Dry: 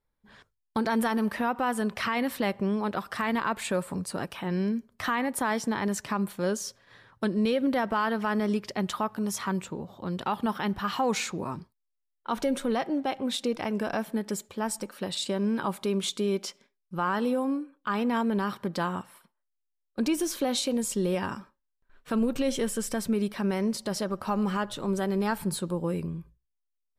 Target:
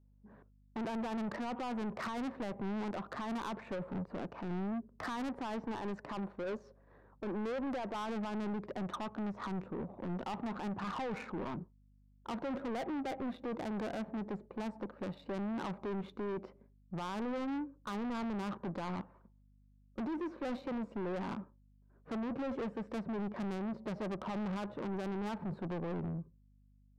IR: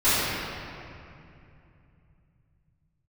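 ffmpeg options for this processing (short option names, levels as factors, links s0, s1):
-filter_complex "[0:a]highpass=170,aemphasis=mode=reproduction:type=75kf,bandreject=f=3200:w=8.5,asettb=1/sr,asplit=3[s0][s1][s2];[s0]atrim=end=5.644[s3];[s1]atrim=start=5.64:end=7.95,asetpts=PTS-STARTPTS,afade=t=in:d=0.004:c=qsin,afade=t=out:st=2.306:d=0.004:c=qsin,bass=f=250:g=-8,treble=f=4000:g=6[s4];[s2]atrim=start=7.946[s5];[s3][s4]acrossfade=d=0.004:c1=hsin:c2=qsin[s6];[s6][s5]acrossfade=d=0.004:c1=qsin:c2=hsin,alimiter=level_in=1.19:limit=0.0631:level=0:latency=1:release=11,volume=0.841,adynamicsmooth=sensitivity=2:basefreq=660,asoftclip=type=tanh:threshold=0.0112,aeval=exprs='val(0)+0.000398*(sin(2*PI*50*n/s)+sin(2*PI*2*50*n/s)/2+sin(2*PI*3*50*n/s)/3+sin(2*PI*4*50*n/s)/4+sin(2*PI*5*50*n/s)/5)':c=same,volume=1.58"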